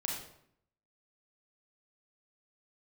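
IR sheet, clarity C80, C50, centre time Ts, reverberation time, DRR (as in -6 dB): 6.0 dB, 2.5 dB, 45 ms, 0.70 s, -1.5 dB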